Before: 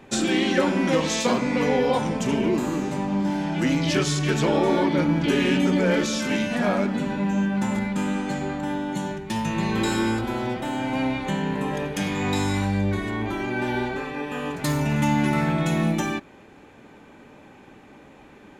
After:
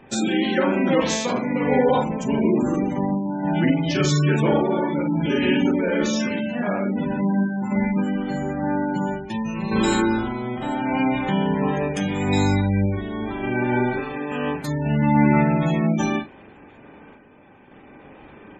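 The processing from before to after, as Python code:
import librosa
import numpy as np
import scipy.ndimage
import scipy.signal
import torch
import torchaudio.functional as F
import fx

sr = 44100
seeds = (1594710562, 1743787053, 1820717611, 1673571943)

y = fx.tremolo_random(x, sr, seeds[0], hz=3.5, depth_pct=55)
y = fx.room_early_taps(y, sr, ms=(41, 73), db=(-4.0, -13.5))
y = fx.spec_gate(y, sr, threshold_db=-25, keep='strong')
y = y * librosa.db_to_amplitude(2.5)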